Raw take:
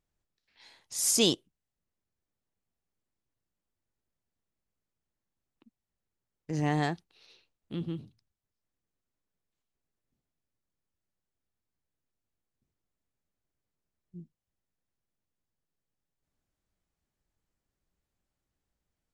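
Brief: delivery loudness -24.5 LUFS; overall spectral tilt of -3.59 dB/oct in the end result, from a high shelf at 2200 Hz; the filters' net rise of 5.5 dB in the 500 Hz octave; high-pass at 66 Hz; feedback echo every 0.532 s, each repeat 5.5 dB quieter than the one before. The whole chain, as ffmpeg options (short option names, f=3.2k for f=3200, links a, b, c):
-af "highpass=66,equalizer=f=500:t=o:g=6.5,highshelf=f=2.2k:g=4.5,aecho=1:1:532|1064|1596|2128|2660|3192|3724:0.531|0.281|0.149|0.079|0.0419|0.0222|0.0118,volume=4dB"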